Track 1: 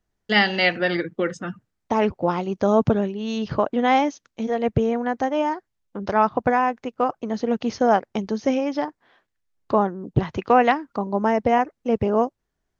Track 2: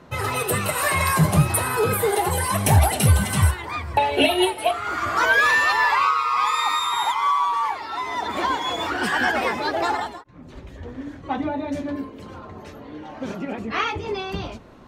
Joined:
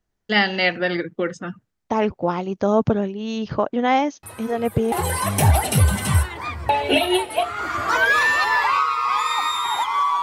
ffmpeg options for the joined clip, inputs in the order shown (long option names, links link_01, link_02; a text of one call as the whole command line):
ffmpeg -i cue0.wav -i cue1.wav -filter_complex "[1:a]asplit=2[link_01][link_02];[0:a]apad=whole_dur=10.22,atrim=end=10.22,atrim=end=4.922[link_03];[link_02]atrim=start=2.198:end=7.5[link_04];[link_01]atrim=start=1.51:end=2.2,asetpts=PTS-STARTPTS,volume=-17dB,afade=type=in:duration=0.004:curve=hsin,afade=type=out:start_time=0.686:duration=0.004:curve=hsin,adelay=4230[link_05];[link_03][link_04]acrossfade=duration=0.004:curve1=hsin:curve2=hsin[link_06];[link_06][link_05]amix=inputs=2:normalize=0" out.wav